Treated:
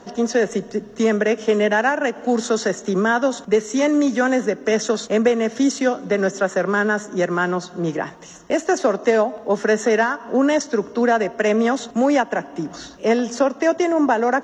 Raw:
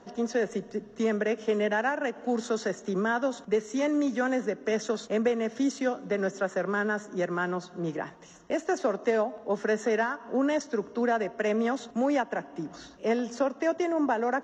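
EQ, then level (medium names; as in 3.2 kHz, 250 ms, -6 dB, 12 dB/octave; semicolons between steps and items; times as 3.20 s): treble shelf 6.1 kHz +7 dB; +9.0 dB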